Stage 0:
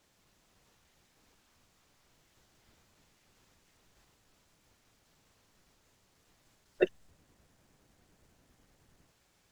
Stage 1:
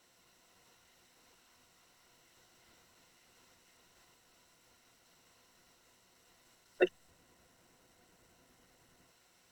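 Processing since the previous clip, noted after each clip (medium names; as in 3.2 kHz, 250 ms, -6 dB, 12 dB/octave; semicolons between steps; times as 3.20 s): rippled EQ curve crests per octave 2, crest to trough 7 dB; peak limiter -15.5 dBFS, peak gain reduction 5 dB; bass shelf 180 Hz -11.5 dB; trim +3 dB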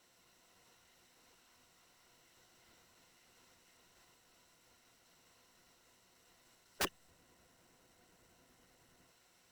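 integer overflow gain 26 dB; short-mantissa float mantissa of 2-bit; trim -1.5 dB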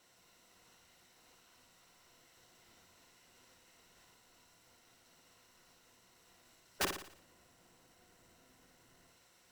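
flutter echo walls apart 9.9 m, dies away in 0.57 s; trim +1 dB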